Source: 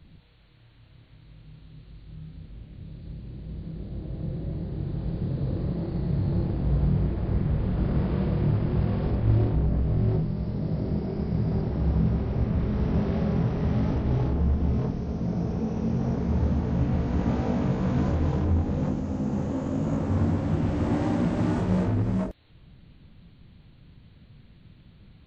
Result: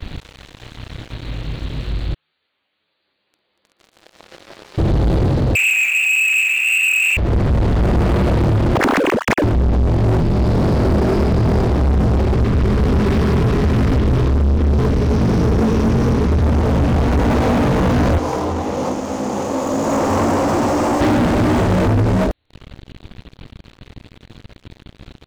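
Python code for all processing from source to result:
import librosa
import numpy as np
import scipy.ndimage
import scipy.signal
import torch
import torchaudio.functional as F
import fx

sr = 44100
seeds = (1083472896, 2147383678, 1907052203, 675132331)

y = fx.chain(x, sr, fx.highpass(hz=1000.0, slope=12),
    fx.ensemble(), at=(2.14, 4.78))
y = fx.chain(y, sr, fx.highpass(hz=44.0, slope=12),
    fx.freq_invert(carrier_hz=2700),
    fx.doubler(ms=13.0, db=-6.5), at=(5.55, 7.17))
y = fx.chain(y, sr, fx.sine_speech(),
    fx.ring_mod(carrier_hz=42.0), at=(8.75, 9.44))
y = fx.chain(y, sr, fx.ellip_bandstop(low_hz=470.0, high_hz=990.0, order=3, stop_db=40),
    fx.echo_single(ms=245, db=-15.0), at=(12.34, 16.42))
y = fx.chain(y, sr, fx.highpass(hz=1100.0, slope=6),
    fx.band_shelf(hz=2500.0, db=-14.0, octaves=1.7), at=(18.18, 21.01))
y = fx.peak_eq(y, sr, hz=160.0, db=-9.5, octaves=0.75)
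y = fx.rider(y, sr, range_db=10, speed_s=0.5)
y = fx.leveller(y, sr, passes=5)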